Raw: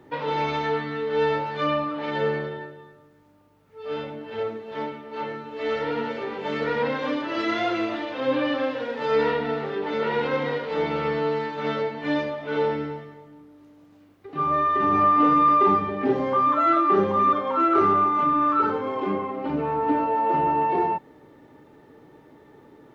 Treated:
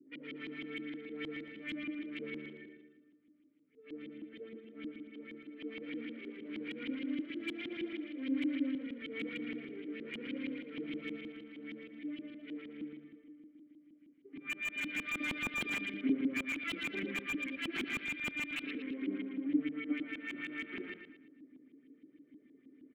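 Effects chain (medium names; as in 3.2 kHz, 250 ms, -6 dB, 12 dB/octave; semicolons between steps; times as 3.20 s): self-modulated delay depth 0.67 ms; high-pass 110 Hz; 11.16–14.41 s: compression 4:1, threshold -29 dBFS, peak gain reduction 8 dB; vowel filter i; LFO low-pass saw up 6.4 Hz 230–3600 Hz; feedback delay 114 ms, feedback 39%, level -8 dB; slew-rate limiter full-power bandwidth 75 Hz; trim -4 dB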